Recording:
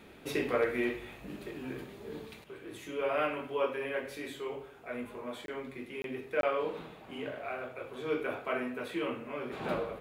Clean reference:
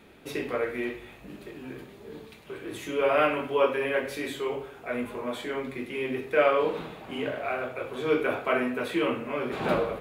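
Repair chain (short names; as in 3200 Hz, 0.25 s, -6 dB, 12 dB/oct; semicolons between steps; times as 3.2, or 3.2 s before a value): clip repair -18 dBFS; interpolate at 5.46/6.02/6.41, 22 ms; gain 0 dB, from 2.44 s +8 dB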